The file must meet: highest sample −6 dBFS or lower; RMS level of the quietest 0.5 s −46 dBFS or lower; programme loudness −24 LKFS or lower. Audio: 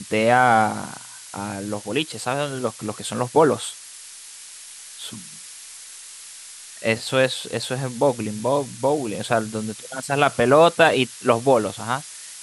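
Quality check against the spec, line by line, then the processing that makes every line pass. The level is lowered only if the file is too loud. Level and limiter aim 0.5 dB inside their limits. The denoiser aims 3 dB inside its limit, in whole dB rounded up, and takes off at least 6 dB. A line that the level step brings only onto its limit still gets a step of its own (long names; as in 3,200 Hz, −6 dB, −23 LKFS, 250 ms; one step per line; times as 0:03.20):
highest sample −3.5 dBFS: out of spec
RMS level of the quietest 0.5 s −41 dBFS: out of spec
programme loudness −21.5 LKFS: out of spec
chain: broadband denoise 6 dB, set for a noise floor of −41 dBFS
level −3 dB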